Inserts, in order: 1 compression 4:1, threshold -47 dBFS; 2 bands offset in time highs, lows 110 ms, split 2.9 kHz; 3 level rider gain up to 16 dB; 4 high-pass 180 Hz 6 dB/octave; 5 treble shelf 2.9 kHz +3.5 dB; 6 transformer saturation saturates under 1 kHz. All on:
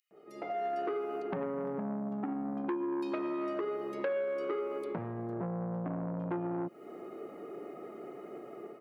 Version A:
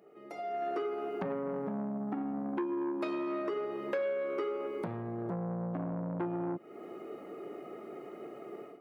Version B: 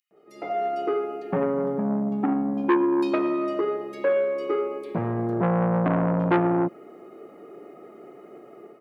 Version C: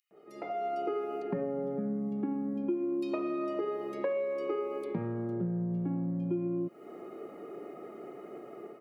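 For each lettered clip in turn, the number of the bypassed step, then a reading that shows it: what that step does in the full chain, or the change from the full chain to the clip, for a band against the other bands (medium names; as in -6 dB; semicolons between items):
2, 4 kHz band +1.5 dB; 1, mean gain reduction 7.5 dB; 6, crest factor change -2.0 dB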